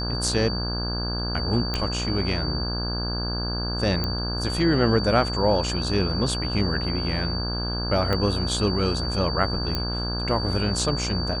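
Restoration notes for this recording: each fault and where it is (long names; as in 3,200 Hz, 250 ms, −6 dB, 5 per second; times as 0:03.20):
mains buzz 60 Hz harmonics 28 −29 dBFS
whistle 4,600 Hz −30 dBFS
0:01.74: click −12 dBFS
0:04.04: click −13 dBFS
0:08.13: click −12 dBFS
0:09.75: click −12 dBFS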